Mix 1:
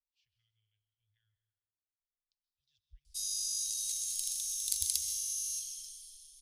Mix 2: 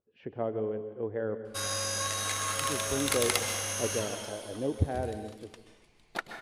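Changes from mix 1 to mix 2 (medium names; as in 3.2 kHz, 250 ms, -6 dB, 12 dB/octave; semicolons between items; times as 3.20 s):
background: entry -1.60 s; master: remove inverse Chebyshev band-stop 200–1000 Hz, stop band 80 dB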